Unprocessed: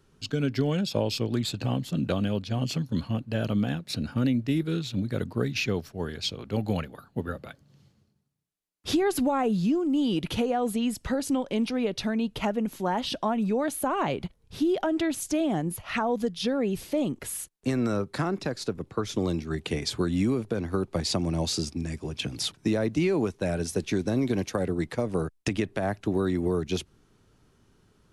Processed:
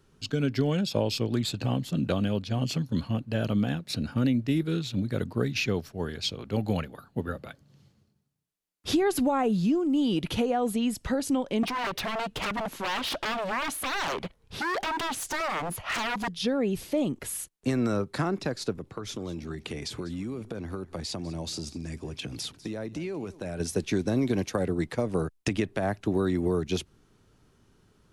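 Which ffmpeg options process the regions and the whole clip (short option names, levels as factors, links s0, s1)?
-filter_complex "[0:a]asettb=1/sr,asplit=3[s0][s1][s2];[s0]atrim=end=11.634[s3];[s1]atrim=start=11.63:end=16.28,asetpts=PTS-STARTPTS,afade=t=in:d=0.004:c=qsin,afade=t=out:st=4.646:d=0.004:c=qsin,aeval=exprs='0.0316*(abs(mod(val(0)/0.0316+3,4)-2)-1)':c=same,equalizer=f=1300:w=0.34:g=7[s4];[s2]atrim=start=16.276[s5];[s3][s4]acrossfade=d=0.004:c1=hsin:c2=qsin[s6];[s6][s5]acrossfade=d=0.004:c1=qsin:c2=hsin,asettb=1/sr,asplit=3[s7][s8][s9];[s7]atrim=end=18.754[s10];[s8]atrim=start=18.75:end=23.6,asetpts=PTS-STARTPTS,afade=t=in:d=0.004:c=qsin,afade=t=out:st=4.846:d=0.004:c=qsin,acompressor=threshold=0.0251:ratio=4:attack=3.2:release=140:knee=1:detection=peak,aecho=1:1:198:0.126,atrim=end_sample=213885[s11];[s9]atrim=start=23.596[s12];[s10][s11]acrossfade=d=0.004:c1=hsin:c2=qsin[s13];[s13][s12]acrossfade=d=0.004:c1=qsin:c2=hsin"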